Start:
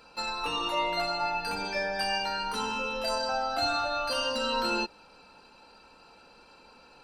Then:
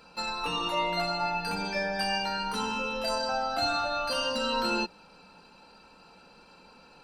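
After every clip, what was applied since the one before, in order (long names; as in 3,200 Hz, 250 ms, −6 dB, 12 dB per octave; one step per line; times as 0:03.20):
parametric band 180 Hz +9 dB 0.45 octaves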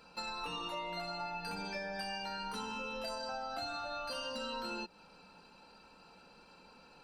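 downward compressor, threshold −33 dBFS, peak gain reduction 9 dB
level −4.5 dB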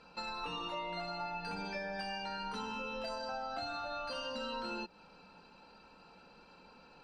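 high-frequency loss of the air 84 metres
level +1 dB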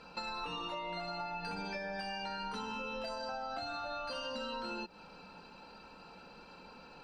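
downward compressor, threshold −42 dBFS, peak gain reduction 6.5 dB
level +5 dB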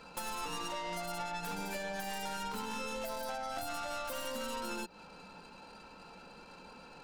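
stylus tracing distortion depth 0.27 ms
level +1 dB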